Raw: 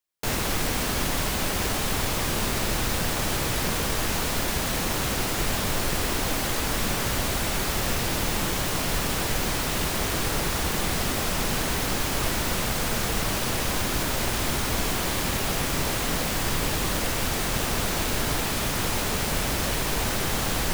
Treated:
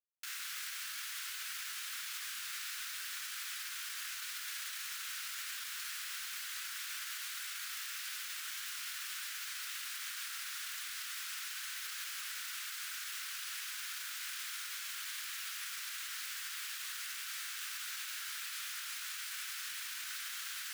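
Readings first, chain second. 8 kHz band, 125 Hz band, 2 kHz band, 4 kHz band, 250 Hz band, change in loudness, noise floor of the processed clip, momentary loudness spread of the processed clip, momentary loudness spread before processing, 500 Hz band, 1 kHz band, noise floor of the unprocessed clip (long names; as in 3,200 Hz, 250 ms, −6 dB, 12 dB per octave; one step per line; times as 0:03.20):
−12.5 dB, below −40 dB, −12.5 dB, −12.0 dB, below −40 dB, −14.5 dB, −44 dBFS, 0 LU, 0 LU, below −40 dB, −22.0 dB, −27 dBFS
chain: Chebyshev high-pass filter 1,400 Hz, order 4
brickwall limiter −25.5 dBFS, peak gain reduction 8 dB
bit-depth reduction 10 bits, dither none
level −7.5 dB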